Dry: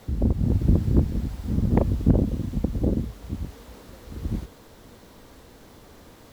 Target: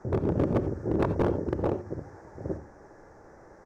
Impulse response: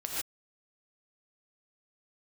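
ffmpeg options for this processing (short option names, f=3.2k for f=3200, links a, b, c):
-filter_complex "[0:a]firequalizer=gain_entry='entry(130,0);entry(190,6);entry(620,1);entry(1000,3);entry(1700,-29);entry(3200,-4);entry(6300,-27)':delay=0.05:min_phase=1,asoftclip=type=hard:threshold=-13dB,asplit=2[a][b];[1:a]atrim=start_sample=2205,adelay=6[c];[b][c]afir=irnorm=-1:irlink=0,volume=-15.5dB[d];[a][d]amix=inputs=2:normalize=0,asetrate=76293,aresample=44100,bandreject=f=72.02:t=h:w=4,bandreject=f=144.04:t=h:w=4,bandreject=f=216.06:t=h:w=4,bandreject=f=288.08:t=h:w=4,bandreject=f=360.1:t=h:w=4,volume=-5.5dB"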